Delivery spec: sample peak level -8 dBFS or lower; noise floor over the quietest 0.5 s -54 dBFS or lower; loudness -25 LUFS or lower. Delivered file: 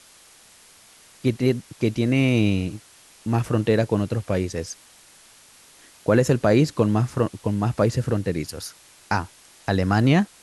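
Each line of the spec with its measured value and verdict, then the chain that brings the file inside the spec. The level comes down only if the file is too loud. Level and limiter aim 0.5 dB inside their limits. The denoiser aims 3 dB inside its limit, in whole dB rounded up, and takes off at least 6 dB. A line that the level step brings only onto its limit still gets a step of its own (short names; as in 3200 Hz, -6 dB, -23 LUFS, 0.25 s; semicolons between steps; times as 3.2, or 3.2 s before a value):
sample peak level -5.5 dBFS: fail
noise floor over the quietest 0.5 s -51 dBFS: fail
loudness -22.5 LUFS: fail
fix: denoiser 6 dB, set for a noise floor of -51 dBFS; gain -3 dB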